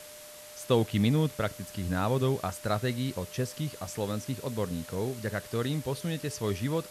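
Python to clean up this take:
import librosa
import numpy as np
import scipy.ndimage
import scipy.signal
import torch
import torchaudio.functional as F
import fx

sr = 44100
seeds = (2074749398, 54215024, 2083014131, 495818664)

y = fx.notch(x, sr, hz=600.0, q=30.0)
y = fx.noise_reduce(y, sr, print_start_s=0.03, print_end_s=0.53, reduce_db=27.0)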